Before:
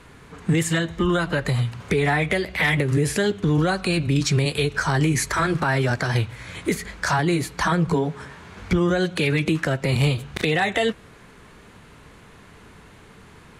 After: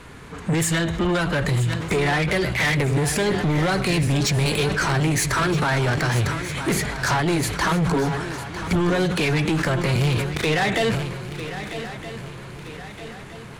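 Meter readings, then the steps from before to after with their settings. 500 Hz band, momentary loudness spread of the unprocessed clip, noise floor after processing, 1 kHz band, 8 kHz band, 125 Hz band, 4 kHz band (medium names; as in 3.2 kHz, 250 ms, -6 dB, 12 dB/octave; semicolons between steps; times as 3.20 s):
+0.5 dB, 6 LU, -38 dBFS, +1.5 dB, +3.5 dB, +1.0 dB, +2.0 dB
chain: saturation -22.5 dBFS, distortion -9 dB; shuffle delay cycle 1270 ms, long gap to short 3:1, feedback 46%, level -12 dB; decay stretcher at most 44 dB/s; trim +5 dB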